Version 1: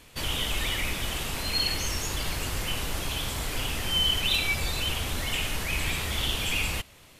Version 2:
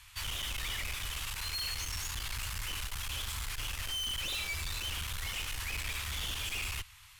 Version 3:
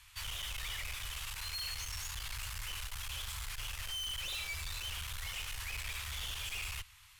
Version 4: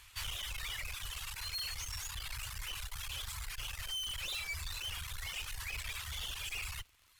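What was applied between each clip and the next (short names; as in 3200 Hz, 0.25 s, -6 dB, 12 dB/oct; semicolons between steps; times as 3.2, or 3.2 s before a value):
inverse Chebyshev band-stop 220–470 Hz, stop band 60 dB; tube stage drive 34 dB, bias 0.4
bell 260 Hz -12.5 dB 0.97 oct; gain -3.5 dB
reverb removal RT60 1.2 s; crackle 120/s -54 dBFS; gain +2 dB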